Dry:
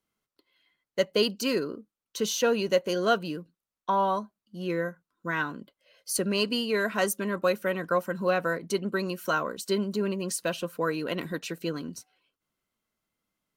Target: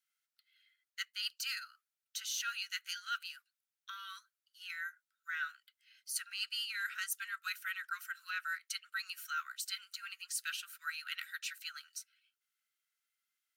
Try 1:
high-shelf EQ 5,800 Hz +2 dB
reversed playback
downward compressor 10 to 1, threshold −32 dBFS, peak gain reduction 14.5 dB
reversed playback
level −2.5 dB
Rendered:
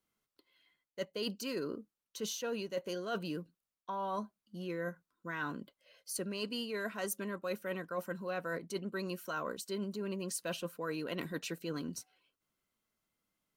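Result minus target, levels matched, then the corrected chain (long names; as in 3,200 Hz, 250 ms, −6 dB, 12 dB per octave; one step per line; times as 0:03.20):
1,000 Hz band +2.5 dB
Butterworth high-pass 1,300 Hz 96 dB per octave
high-shelf EQ 5,800 Hz +2 dB
reversed playback
downward compressor 10 to 1, threshold −32 dBFS, peak gain reduction 9.5 dB
reversed playback
level −2.5 dB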